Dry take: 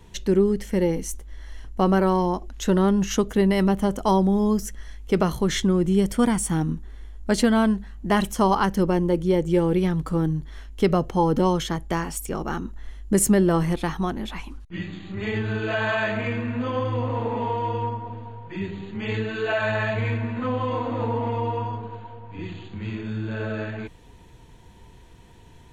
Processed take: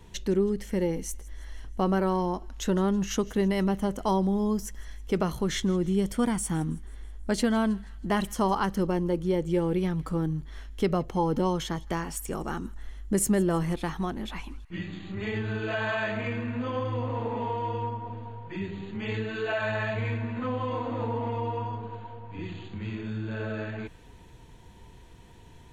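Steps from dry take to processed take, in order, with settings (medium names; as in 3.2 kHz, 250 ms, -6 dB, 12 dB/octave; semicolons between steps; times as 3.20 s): in parallel at -1.5 dB: compression, threshold -32 dBFS, peak gain reduction 17 dB; on the sum: feedback echo behind a high-pass 161 ms, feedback 54%, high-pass 1.7 kHz, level -21 dB; trim -7 dB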